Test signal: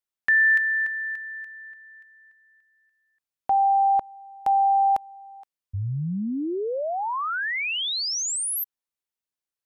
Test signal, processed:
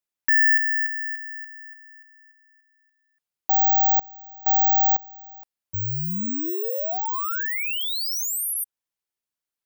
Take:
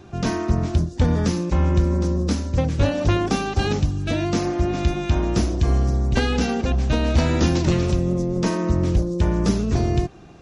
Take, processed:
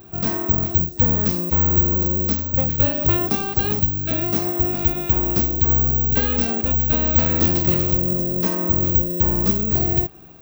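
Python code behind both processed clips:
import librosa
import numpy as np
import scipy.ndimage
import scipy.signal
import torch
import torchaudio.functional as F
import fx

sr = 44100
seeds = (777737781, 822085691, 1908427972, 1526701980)

y = (np.kron(x[::2], np.eye(2)[0]) * 2)[:len(x)]
y = y * librosa.db_to_amplitude(-2.5)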